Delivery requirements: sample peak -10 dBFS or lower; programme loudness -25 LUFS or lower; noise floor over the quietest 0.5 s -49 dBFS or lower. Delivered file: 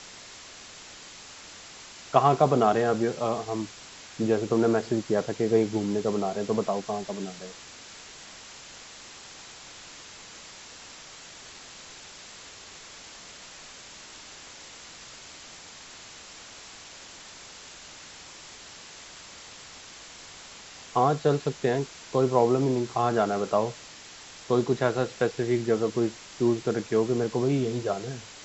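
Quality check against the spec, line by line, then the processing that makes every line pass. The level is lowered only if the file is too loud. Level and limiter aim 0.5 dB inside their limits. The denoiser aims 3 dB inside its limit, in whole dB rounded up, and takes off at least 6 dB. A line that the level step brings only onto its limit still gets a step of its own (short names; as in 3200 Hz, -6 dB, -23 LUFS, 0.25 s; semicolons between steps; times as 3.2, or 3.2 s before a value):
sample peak -6.0 dBFS: fail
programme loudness -26.5 LUFS: OK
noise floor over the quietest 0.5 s -46 dBFS: fail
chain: denoiser 6 dB, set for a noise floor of -46 dBFS; limiter -10.5 dBFS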